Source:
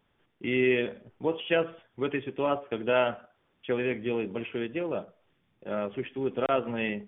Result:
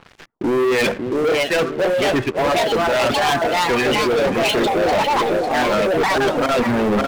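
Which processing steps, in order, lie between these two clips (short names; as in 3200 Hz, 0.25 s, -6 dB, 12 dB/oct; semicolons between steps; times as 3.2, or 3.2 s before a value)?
LFO low-pass sine 1.4 Hz 550–2400 Hz; in parallel at -8 dB: sine folder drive 4 dB, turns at -8.5 dBFS; on the sum: echoes that change speed 0.747 s, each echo +3 st, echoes 3; reverb removal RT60 0.64 s; feedback echo 0.551 s, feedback 42%, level -19 dB; reverse; compressor 16:1, threshold -32 dBFS, peak gain reduction 22.5 dB; reverse; sample leveller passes 5; gain +8 dB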